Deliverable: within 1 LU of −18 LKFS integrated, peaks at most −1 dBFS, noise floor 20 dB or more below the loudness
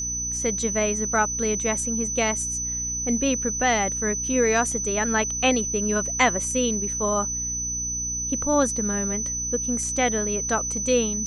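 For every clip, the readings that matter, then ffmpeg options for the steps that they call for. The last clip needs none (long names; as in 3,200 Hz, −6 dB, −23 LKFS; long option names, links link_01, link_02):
mains hum 60 Hz; hum harmonics up to 300 Hz; level of the hum −35 dBFS; interfering tone 6,000 Hz; level of the tone −26 dBFS; integrated loudness −23.0 LKFS; sample peak −5.0 dBFS; target loudness −18.0 LKFS
→ -af "bandreject=frequency=60:width_type=h:width=6,bandreject=frequency=120:width_type=h:width=6,bandreject=frequency=180:width_type=h:width=6,bandreject=frequency=240:width_type=h:width=6,bandreject=frequency=300:width_type=h:width=6"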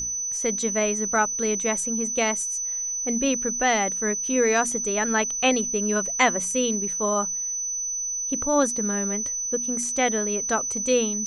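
mains hum none found; interfering tone 6,000 Hz; level of the tone −26 dBFS
→ -af "bandreject=frequency=6000:width=30"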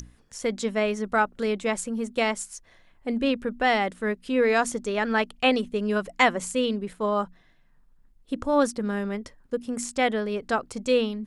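interfering tone none found; integrated loudness −26.0 LKFS; sample peak −5.5 dBFS; target loudness −18.0 LKFS
→ -af "volume=8dB,alimiter=limit=-1dB:level=0:latency=1"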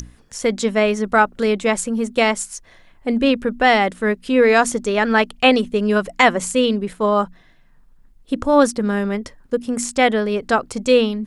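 integrated loudness −18.0 LKFS; sample peak −1.0 dBFS; background noise floor −51 dBFS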